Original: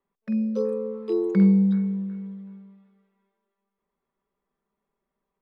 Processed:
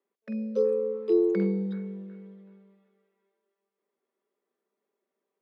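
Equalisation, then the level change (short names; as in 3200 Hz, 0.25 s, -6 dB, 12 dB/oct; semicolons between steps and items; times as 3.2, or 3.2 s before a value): HPF 320 Hz 24 dB/oct; tilt -2 dB/oct; bell 970 Hz -8 dB 0.99 oct; +1.5 dB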